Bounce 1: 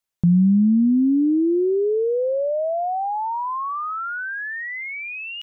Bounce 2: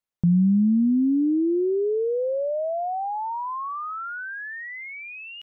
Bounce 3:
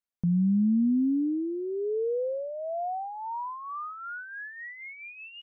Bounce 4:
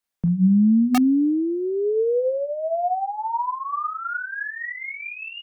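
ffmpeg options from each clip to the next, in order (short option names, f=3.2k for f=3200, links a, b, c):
-af "highshelf=f=2.4k:g=-7,volume=-3dB"
-af "aecho=1:1:4.2:0.36,volume=-6.5dB"
-filter_complex "[0:a]bandreject=f=60:t=h:w=6,bandreject=f=120:t=h:w=6,bandreject=f=180:t=h:w=6,bandreject=f=240:t=h:w=6,acrossover=split=260|620[a][b][c];[b]aeval=exprs='(mod(21.1*val(0)+1,2)-1)/21.1':c=same[d];[c]aecho=1:1:27|41:0.531|0.631[e];[a][d][e]amix=inputs=3:normalize=0,volume=7.5dB"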